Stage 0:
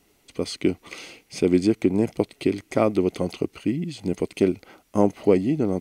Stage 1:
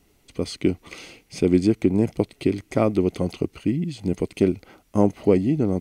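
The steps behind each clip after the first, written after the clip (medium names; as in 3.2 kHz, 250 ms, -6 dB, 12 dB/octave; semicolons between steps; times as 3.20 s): bass shelf 160 Hz +10 dB; trim -1.5 dB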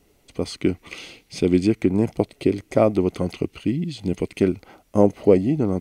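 sweeping bell 0.39 Hz 490–3900 Hz +6 dB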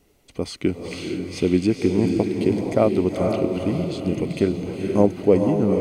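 echo that smears into a reverb 474 ms, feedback 42%, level -3.5 dB; trim -1 dB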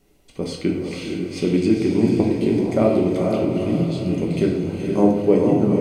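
simulated room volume 230 m³, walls mixed, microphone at 1.1 m; trim -2.5 dB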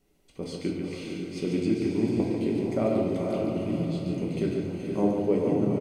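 delay 143 ms -5.5 dB; trim -9 dB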